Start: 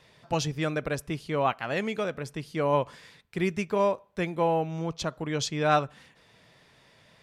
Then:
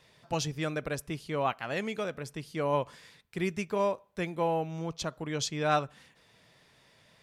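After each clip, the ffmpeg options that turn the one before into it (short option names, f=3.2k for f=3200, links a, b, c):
-af "highshelf=f=5.2k:g=5,volume=-4dB"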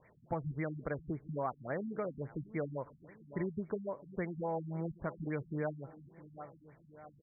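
-filter_complex "[0:a]asplit=2[a][b];[b]adelay=663,lowpass=f=2k:p=1,volume=-20dB,asplit=2[c][d];[d]adelay=663,lowpass=f=2k:p=1,volume=0.54,asplit=2[e][f];[f]adelay=663,lowpass=f=2k:p=1,volume=0.54,asplit=2[g][h];[h]adelay=663,lowpass=f=2k:p=1,volume=0.54[i];[a][c][e][g][i]amix=inputs=5:normalize=0,acompressor=threshold=-32dB:ratio=6,afftfilt=real='re*lt(b*sr/1024,250*pow(2400/250,0.5+0.5*sin(2*PI*3.6*pts/sr)))':imag='im*lt(b*sr/1024,250*pow(2400/250,0.5+0.5*sin(2*PI*3.6*pts/sr)))':win_size=1024:overlap=0.75"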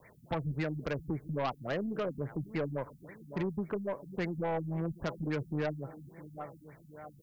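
-filter_complex "[0:a]aeval=exprs='0.0668*(cos(1*acos(clip(val(0)/0.0668,-1,1)))-cos(1*PI/2))+0.0119*(cos(5*acos(clip(val(0)/0.0668,-1,1)))-cos(5*PI/2))+0.00376*(cos(6*acos(clip(val(0)/0.0668,-1,1)))-cos(6*PI/2))':c=same,acrossover=split=130|1200[a][b][c];[c]crystalizer=i=3:c=0[d];[a][b][d]amix=inputs=3:normalize=0"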